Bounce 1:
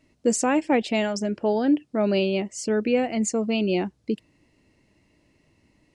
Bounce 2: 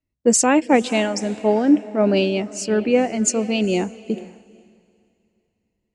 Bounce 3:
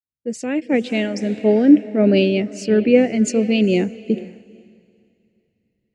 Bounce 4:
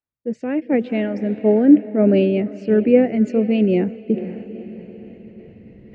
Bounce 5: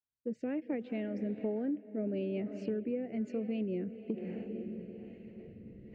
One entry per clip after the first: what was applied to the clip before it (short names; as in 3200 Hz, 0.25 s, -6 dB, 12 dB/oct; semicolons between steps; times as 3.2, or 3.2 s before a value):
diffused feedback echo 0.483 s, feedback 44%, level -14 dB; three-band expander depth 70%; gain +4 dB
opening faded in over 1.47 s; ten-band EQ 125 Hz +10 dB, 250 Hz +6 dB, 500 Hz +8 dB, 1000 Hz -11 dB, 2000 Hz +9 dB, 4000 Hz +4 dB, 8000 Hz -6 dB; gain -4 dB
reverse; upward compressor, threshold -20 dBFS; reverse; LPF 1700 Hz 12 dB/oct
rotary speaker horn 1.1 Hz; compressor 10:1, threshold -25 dBFS, peak gain reduction 18.5 dB; gain -7 dB